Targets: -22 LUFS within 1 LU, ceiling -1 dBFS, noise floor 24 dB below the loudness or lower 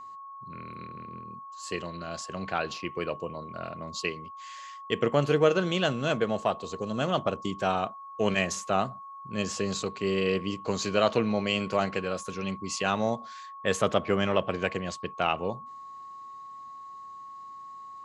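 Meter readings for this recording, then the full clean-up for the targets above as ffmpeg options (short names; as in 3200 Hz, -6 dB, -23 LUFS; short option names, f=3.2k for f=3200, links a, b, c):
steady tone 1100 Hz; tone level -41 dBFS; loudness -29.0 LUFS; peak -8.5 dBFS; loudness target -22.0 LUFS
-> -af "bandreject=f=1.1k:w=30"
-af "volume=7dB"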